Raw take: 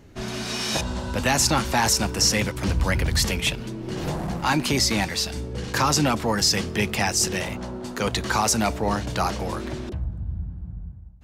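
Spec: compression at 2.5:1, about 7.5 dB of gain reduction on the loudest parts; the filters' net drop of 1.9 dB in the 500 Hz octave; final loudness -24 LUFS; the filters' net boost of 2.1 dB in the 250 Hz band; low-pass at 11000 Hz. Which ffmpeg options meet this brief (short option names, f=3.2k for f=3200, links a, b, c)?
-af "lowpass=11k,equalizer=f=250:t=o:g=3.5,equalizer=f=500:t=o:g=-3.5,acompressor=threshold=-28dB:ratio=2.5,volume=5.5dB"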